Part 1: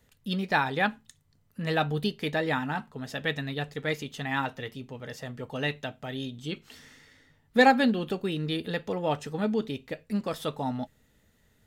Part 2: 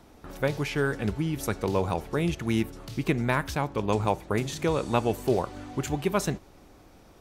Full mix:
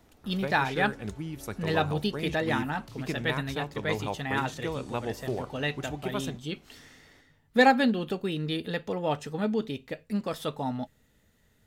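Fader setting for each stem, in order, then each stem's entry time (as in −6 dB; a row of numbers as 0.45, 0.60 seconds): −0.5, −8.0 decibels; 0.00, 0.00 seconds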